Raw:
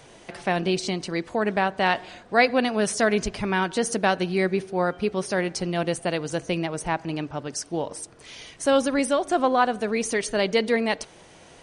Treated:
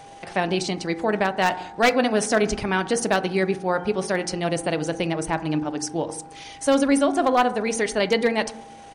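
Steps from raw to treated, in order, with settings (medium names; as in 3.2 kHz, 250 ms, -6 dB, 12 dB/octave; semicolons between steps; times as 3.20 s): one-sided wavefolder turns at -12.5 dBFS; whistle 800 Hz -44 dBFS; tempo 1.3×; FDN reverb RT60 0.78 s, low-frequency decay 1.5×, high-frequency decay 0.25×, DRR 11 dB; trim +1.5 dB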